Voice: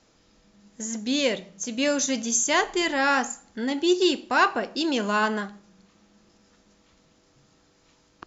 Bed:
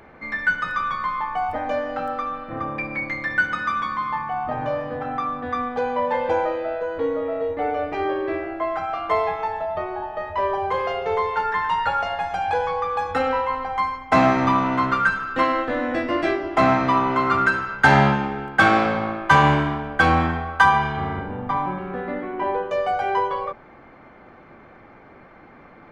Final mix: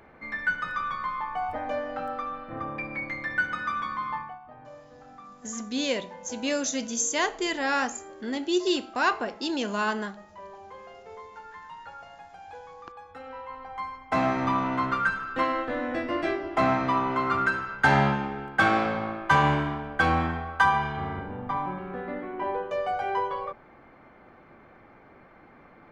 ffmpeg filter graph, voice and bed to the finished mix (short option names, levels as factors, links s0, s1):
-filter_complex "[0:a]adelay=4650,volume=0.631[s0];[1:a]volume=2.99,afade=t=out:st=4.14:d=0.25:silence=0.16788,afade=t=in:st=13.22:d=1.43:silence=0.16788[s1];[s0][s1]amix=inputs=2:normalize=0"